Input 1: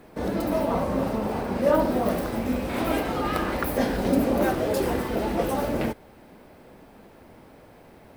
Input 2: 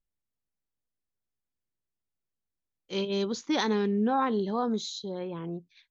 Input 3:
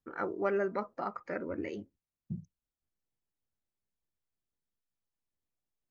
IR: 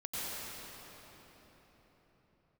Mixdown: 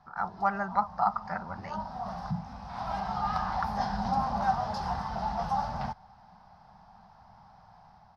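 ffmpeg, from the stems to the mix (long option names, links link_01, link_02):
-filter_complex "[0:a]lowpass=8600,volume=-9.5dB[link_01];[1:a]lowpass=1300,volume=-13dB[link_02];[2:a]volume=2dB,asplit=2[link_03][link_04];[link_04]apad=whole_len=360240[link_05];[link_01][link_05]sidechaincompress=threshold=-41dB:ratio=5:attack=20:release=1140[link_06];[link_06][link_02][link_03]amix=inputs=3:normalize=0,firequalizer=gain_entry='entry(190,0);entry(290,-26);entry(520,-19);entry(760,9);entry(2300,-12);entry(5200,5);entry(7600,-17)':delay=0.05:min_phase=1,dynaudnorm=framelen=100:gausssize=7:maxgain=4.5dB"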